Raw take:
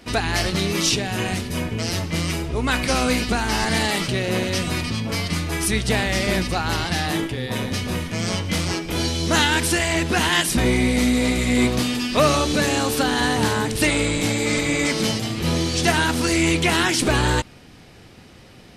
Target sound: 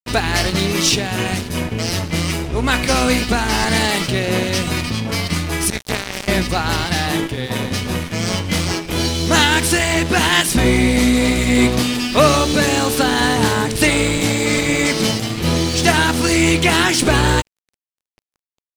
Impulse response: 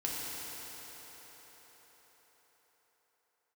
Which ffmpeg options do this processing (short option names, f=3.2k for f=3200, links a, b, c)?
-filter_complex "[0:a]asettb=1/sr,asplit=3[a][b][c];[a]atrim=end=5.704[d];[b]atrim=start=5.7:end=6.28,asetpts=PTS-STARTPTS,afade=t=in:d=0.004:c=qsin,afade=t=out:st=0.576:d=0.004:c=qsin,aeval=exprs='0.398*(cos(1*acos(clip(val(0)/0.398,-1,1)))-cos(1*PI/2))+0.126*(cos(3*acos(clip(val(0)/0.398,-1,1)))-cos(3*PI/2))+0.02*(cos(5*acos(clip(val(0)/0.398,-1,1)))-cos(5*PI/2))+0.0282*(cos(7*acos(clip(val(0)/0.398,-1,1)))-cos(7*PI/2))':c=same[e];[c]atrim=start=6.276[f];[d][e]acrossfade=d=0.004:c1=hsin:c2=qsin[g];[g][f]acrossfade=d=0.004:c1=qsin:c2=hsin,aeval=exprs='sgn(val(0))*max(abs(val(0))-0.0158,0)':c=same,volume=5.5dB"